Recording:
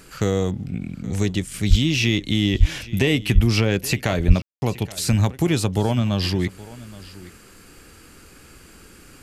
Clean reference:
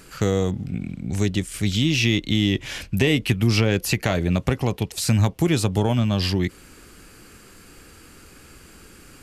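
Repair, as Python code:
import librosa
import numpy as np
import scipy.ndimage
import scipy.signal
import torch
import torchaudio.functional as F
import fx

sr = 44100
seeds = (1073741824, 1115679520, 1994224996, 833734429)

y = fx.fix_deplosive(x, sr, at_s=(1.69, 2.59, 3.34, 4.27))
y = fx.fix_ambience(y, sr, seeds[0], print_start_s=7.37, print_end_s=7.87, start_s=4.42, end_s=4.62)
y = fx.fix_echo_inverse(y, sr, delay_ms=823, level_db=-19.0)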